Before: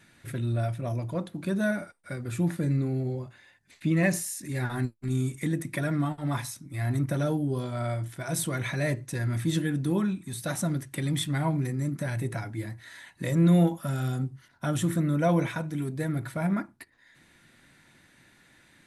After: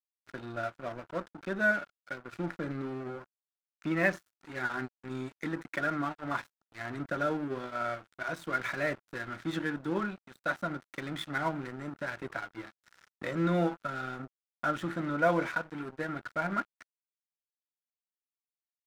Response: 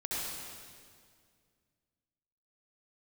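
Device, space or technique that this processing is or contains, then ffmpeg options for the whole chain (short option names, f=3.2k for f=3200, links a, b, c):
pocket radio on a weak battery: -af "highpass=300,lowpass=3.1k,aeval=exprs='sgn(val(0))*max(abs(val(0))-0.00668,0)':c=same,equalizer=f=1.4k:t=o:w=0.4:g=10"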